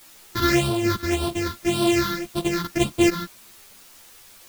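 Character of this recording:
a buzz of ramps at a fixed pitch in blocks of 128 samples
phaser sweep stages 6, 1.8 Hz, lowest notch 650–1,900 Hz
a quantiser's noise floor 8 bits, dither triangular
a shimmering, thickened sound

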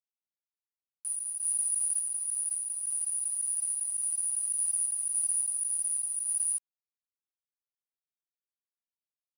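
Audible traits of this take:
a quantiser's noise floor 8 bits, dither none
sample-and-hold tremolo
a shimmering, thickened sound

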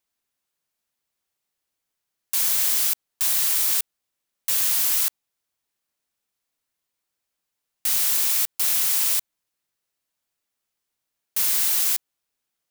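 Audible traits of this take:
background noise floor −82 dBFS
spectral slope +3.0 dB per octave

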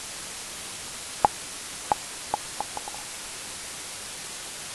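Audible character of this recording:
a quantiser's noise floor 6 bits, dither triangular
AAC

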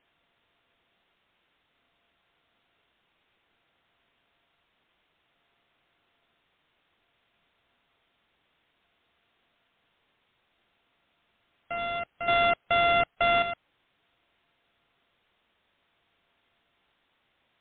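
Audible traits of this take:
a buzz of ramps at a fixed pitch in blocks of 64 samples
chopped level 0.57 Hz, depth 65%, duty 65%
a quantiser's noise floor 12 bits, dither triangular
MP3

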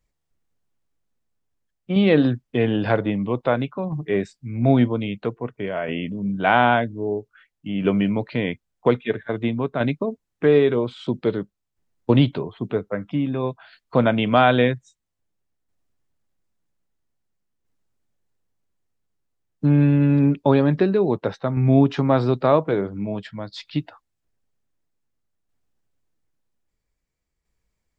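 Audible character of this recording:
tremolo saw down 0.51 Hz, depth 45%

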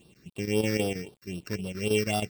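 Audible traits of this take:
a buzz of ramps at a fixed pitch in blocks of 16 samples
chopped level 6.3 Hz, depth 60%, duty 85%
a quantiser's noise floor 10 bits, dither none
phaser sweep stages 6, 3.8 Hz, lowest notch 770–2,000 Hz

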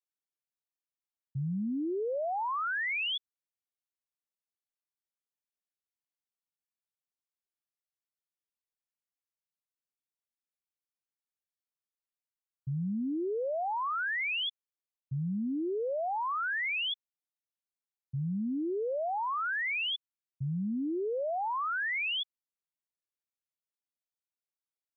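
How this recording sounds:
background noise floor −96 dBFS
spectral slope −3.0 dB per octave

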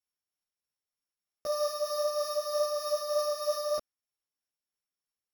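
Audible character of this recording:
a buzz of ramps at a fixed pitch in blocks of 8 samples
tremolo triangle 3.2 Hz, depth 35%
a shimmering, thickened sound

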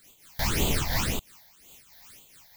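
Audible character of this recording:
a quantiser's noise floor 8 bits, dither triangular
phaser sweep stages 8, 1.9 Hz, lowest notch 350–1,700 Hz
amplitude modulation by smooth noise

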